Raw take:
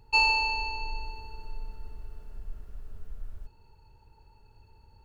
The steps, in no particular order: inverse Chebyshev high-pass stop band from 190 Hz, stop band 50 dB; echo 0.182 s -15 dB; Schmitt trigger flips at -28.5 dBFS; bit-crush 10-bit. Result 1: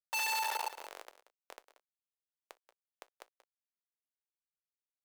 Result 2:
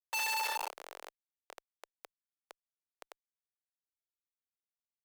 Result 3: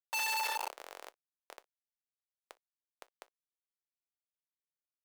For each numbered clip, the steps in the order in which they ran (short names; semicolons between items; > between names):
Schmitt trigger > echo > bit-crush > inverse Chebyshev high-pass; bit-crush > echo > Schmitt trigger > inverse Chebyshev high-pass; echo > Schmitt trigger > bit-crush > inverse Chebyshev high-pass